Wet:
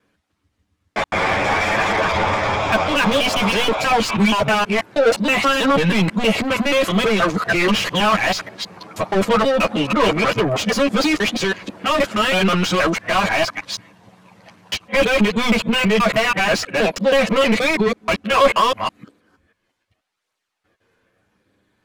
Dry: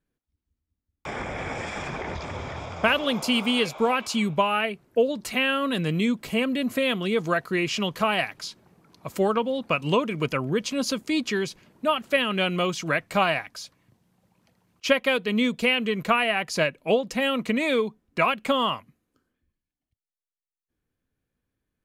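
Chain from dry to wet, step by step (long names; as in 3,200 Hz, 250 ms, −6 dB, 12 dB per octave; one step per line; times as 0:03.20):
reversed piece by piece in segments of 160 ms
low-pass filter 12,000 Hz 12 dB per octave
mid-hump overdrive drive 34 dB, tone 2,200 Hz, clips at −5.5 dBFS
multi-voice chorus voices 6, 0.41 Hz, delay 10 ms, depth 1 ms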